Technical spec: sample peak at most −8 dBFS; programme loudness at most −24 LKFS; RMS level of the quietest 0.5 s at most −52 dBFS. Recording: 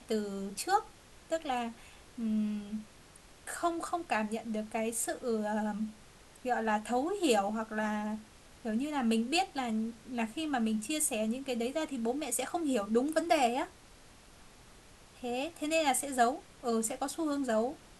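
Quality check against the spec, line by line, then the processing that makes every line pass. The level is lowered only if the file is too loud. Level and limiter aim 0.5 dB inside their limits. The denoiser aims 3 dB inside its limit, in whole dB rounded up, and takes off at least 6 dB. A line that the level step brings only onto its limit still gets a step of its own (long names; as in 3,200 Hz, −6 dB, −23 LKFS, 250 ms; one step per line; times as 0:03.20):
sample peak −15.0 dBFS: in spec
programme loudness −33.0 LKFS: in spec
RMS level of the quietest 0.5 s −56 dBFS: in spec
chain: no processing needed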